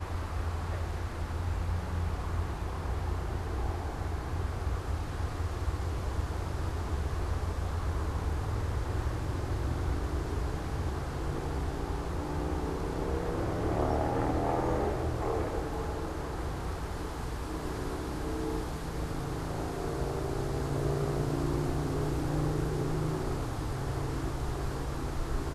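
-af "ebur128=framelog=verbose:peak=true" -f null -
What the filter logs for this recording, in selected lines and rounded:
Integrated loudness:
  I:         -34.0 LUFS
  Threshold: -44.0 LUFS
Loudness range:
  LRA:         3.8 LU
  Threshold: -53.9 LUFS
  LRA low:   -35.6 LUFS
  LRA high:  -31.8 LUFS
True peak:
  Peak:      -17.4 dBFS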